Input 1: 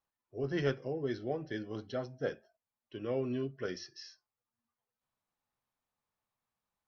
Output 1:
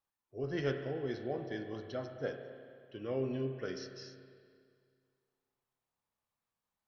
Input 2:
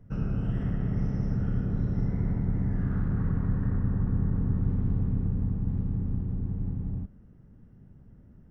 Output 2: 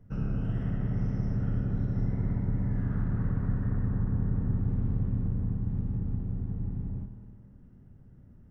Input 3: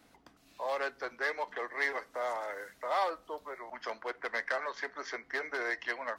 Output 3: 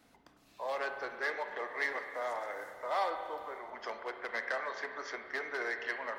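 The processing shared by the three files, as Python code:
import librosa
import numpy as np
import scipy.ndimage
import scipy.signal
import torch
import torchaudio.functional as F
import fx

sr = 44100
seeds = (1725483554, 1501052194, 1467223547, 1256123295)

y = fx.rev_spring(x, sr, rt60_s=2.2, pass_ms=(30, 53), chirp_ms=20, drr_db=6.0)
y = fx.end_taper(y, sr, db_per_s=280.0)
y = F.gain(torch.from_numpy(y), -2.5).numpy()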